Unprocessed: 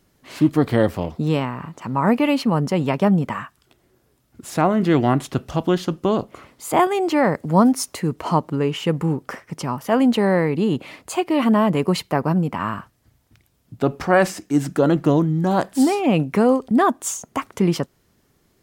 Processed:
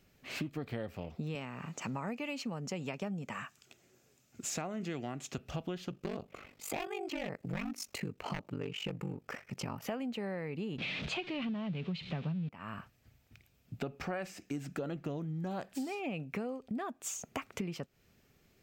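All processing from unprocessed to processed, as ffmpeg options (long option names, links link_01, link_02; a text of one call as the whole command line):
ffmpeg -i in.wav -filter_complex "[0:a]asettb=1/sr,asplit=3[link_01][link_02][link_03];[link_01]atrim=end=1.354[link_04];[link_02]atrim=start=1.35:end=5.38,asetpts=PTS-STARTPTS,afade=type=in:duration=0.004:curve=qsin,afade=type=out:start_time=4.026:duration=0.004:curve=qsin,highpass=120,equalizer=frequency=6800:width_type=o:width=0.74:gain=12[link_05];[link_03]atrim=start=5.376[link_06];[link_04][link_05]acrossfade=duration=0.004:curve1=hsin:curve2=qsin[link_07];[link_07][link_06]acrossfade=duration=0.004:curve1=qsin:curve2=hsin,asettb=1/sr,asplit=3[link_08][link_09][link_10];[link_08]atrim=end=5.904[link_11];[link_09]atrim=start=5.9:end=9.83,asetpts=PTS-STARTPTS,afade=type=in:duration=0.004:curve=qsin,afade=type=out:start_time=3.926:duration=0.004:curve=qsin,aeval=exprs='0.251*(abs(mod(val(0)/0.251+3,4)-2)-1)':channel_layout=same,aeval=exprs='val(0)*sin(2*PI*24*n/s)':channel_layout=same[link_12];[link_10]atrim=start=9.826[link_13];[link_11][link_12]acrossfade=duration=0.004:curve1=hsin:curve2=qsin[link_14];[link_14][link_13]acrossfade=duration=0.004:curve1=qsin:curve2=hsin,asettb=1/sr,asplit=3[link_15][link_16][link_17];[link_15]atrim=end=10.784[link_18];[link_16]atrim=start=10.78:end=12.49,asetpts=PTS-STARTPTS,afade=type=in:duration=0.004:curve=qsin,afade=type=out:start_time=1.706:duration=0.004:curve=qsin,aeval=exprs='val(0)+0.5*0.0531*sgn(val(0))':channel_layout=same,lowpass=frequency=3600:width_type=q:width=2.9,equalizer=frequency=160:width=1.5:gain=14[link_19];[link_17]atrim=start=12.486[link_20];[link_18][link_19]acrossfade=duration=0.004:curve1=hsin:curve2=qsin[link_21];[link_21][link_20]acrossfade=duration=0.004:curve1=qsin:curve2=hsin,equalizer=frequency=315:width_type=o:width=0.33:gain=-5,equalizer=frequency=1000:width_type=o:width=0.33:gain=-7,equalizer=frequency=2500:width_type=o:width=0.33:gain=8,equalizer=frequency=10000:width_type=o:width=0.33:gain=-10,acompressor=threshold=-30dB:ratio=12,volume=-5dB" out.wav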